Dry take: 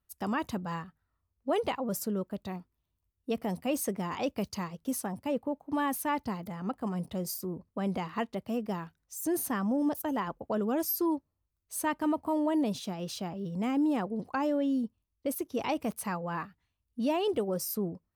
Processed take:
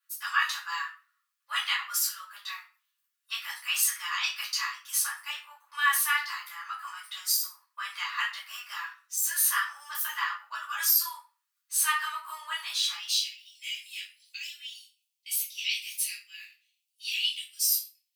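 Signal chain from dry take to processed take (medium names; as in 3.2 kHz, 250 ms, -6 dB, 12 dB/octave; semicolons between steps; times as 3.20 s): steep high-pass 1.2 kHz 48 dB/octave, from 12.96 s 2.4 kHz; reverberation RT60 0.35 s, pre-delay 3 ms, DRR -7 dB; dynamic bell 3.9 kHz, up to +5 dB, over -48 dBFS, Q 1.6; trim +2.5 dB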